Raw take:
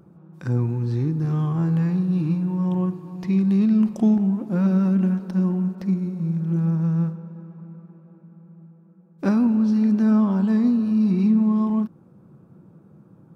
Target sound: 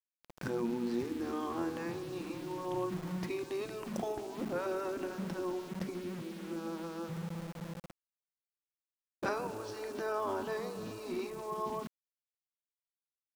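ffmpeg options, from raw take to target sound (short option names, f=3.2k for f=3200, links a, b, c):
-af "aeval=exprs='val(0)*gte(abs(val(0)),0.0119)':c=same,afftfilt=real='re*lt(hypot(re,im),0.355)':imag='im*lt(hypot(re,im),0.355)':win_size=1024:overlap=0.75,volume=-2.5dB"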